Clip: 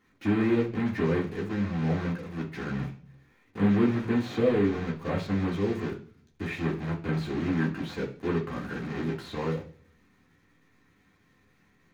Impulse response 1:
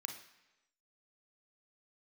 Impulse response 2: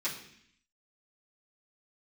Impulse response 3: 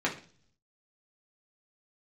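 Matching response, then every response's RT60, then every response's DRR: 3; 1.0 s, 0.65 s, 0.45 s; 3.5 dB, -11.0 dB, -4.0 dB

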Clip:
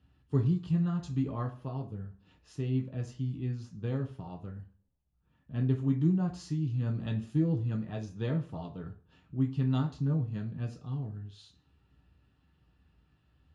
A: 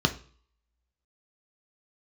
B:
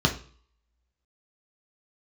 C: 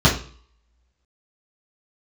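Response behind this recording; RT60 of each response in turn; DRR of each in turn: B; 0.45 s, 0.45 s, 0.45 s; 5.5 dB, 1.0 dB, -8.0 dB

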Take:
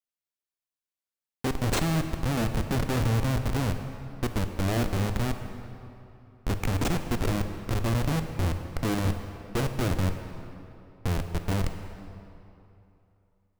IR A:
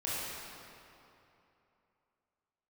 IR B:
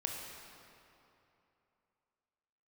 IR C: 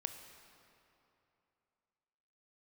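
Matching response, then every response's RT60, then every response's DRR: C; 2.9 s, 2.9 s, 2.9 s; -9.0 dB, 0.0 dB, 7.0 dB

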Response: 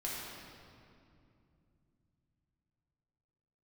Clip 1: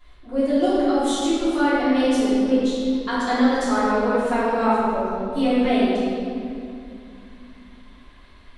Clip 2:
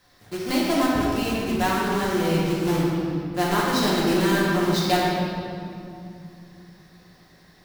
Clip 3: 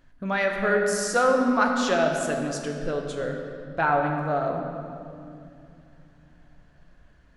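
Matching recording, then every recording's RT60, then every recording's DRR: 2; 2.6 s, 2.6 s, 2.7 s; -13.5 dB, -6.5 dB, 1.5 dB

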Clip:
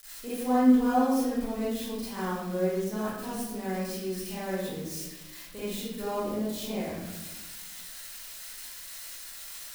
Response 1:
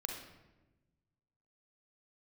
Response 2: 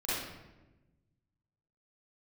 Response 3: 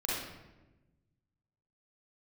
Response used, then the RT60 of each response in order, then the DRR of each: 2; 1.1 s, 1.1 s, 1.1 s; 2.0 dB, -11.5 dB, -6.5 dB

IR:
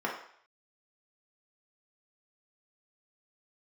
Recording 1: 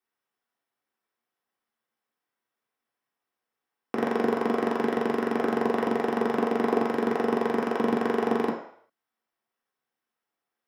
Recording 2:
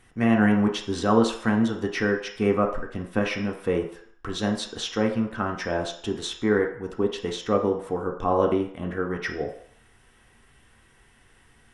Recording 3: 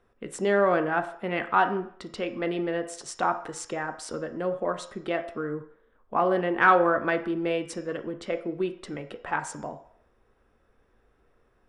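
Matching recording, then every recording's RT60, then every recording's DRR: 1; 0.60 s, 0.60 s, 0.60 s; -3.0 dB, 1.5 dB, 7.0 dB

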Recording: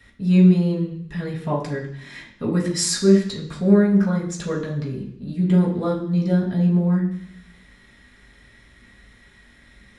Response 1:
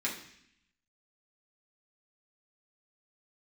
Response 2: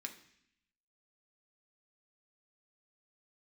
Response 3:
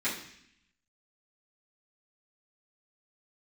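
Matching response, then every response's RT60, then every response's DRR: 1; 0.70 s, 0.70 s, 0.70 s; -5.5 dB, 3.5 dB, -12.5 dB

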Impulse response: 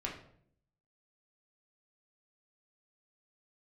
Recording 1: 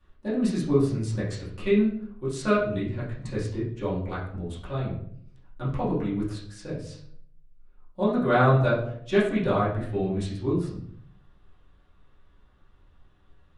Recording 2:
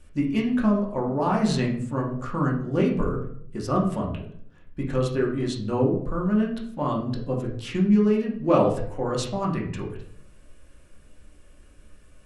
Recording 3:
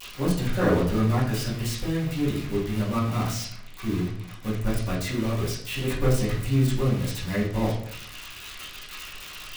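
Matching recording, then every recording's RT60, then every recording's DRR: 2; 0.65 s, 0.65 s, 0.65 s; -11.0 dB, -2.5 dB, -16.5 dB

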